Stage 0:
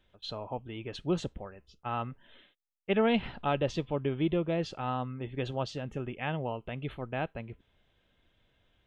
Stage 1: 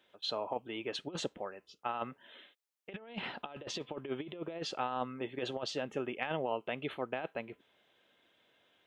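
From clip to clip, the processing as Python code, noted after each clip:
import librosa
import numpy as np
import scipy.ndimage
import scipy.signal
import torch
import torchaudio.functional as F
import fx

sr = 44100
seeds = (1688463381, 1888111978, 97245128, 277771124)

y = scipy.signal.sosfilt(scipy.signal.butter(2, 320.0, 'highpass', fs=sr, output='sos'), x)
y = fx.over_compress(y, sr, threshold_db=-36.0, ratio=-0.5)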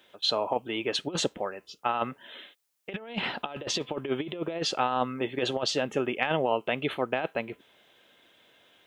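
y = fx.high_shelf(x, sr, hz=5100.0, db=6.0)
y = y * 10.0 ** (8.5 / 20.0)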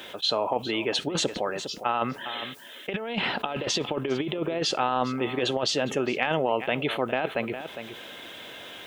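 y = x + 10.0 ** (-19.5 / 20.0) * np.pad(x, (int(407 * sr / 1000.0), 0))[:len(x)]
y = fx.env_flatten(y, sr, amount_pct=50)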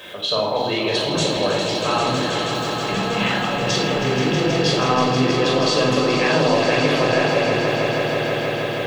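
y = fx.echo_swell(x, sr, ms=160, loudest=5, wet_db=-9.0)
y = fx.room_shoebox(y, sr, seeds[0], volume_m3=2400.0, walls='furnished', distance_m=5.5)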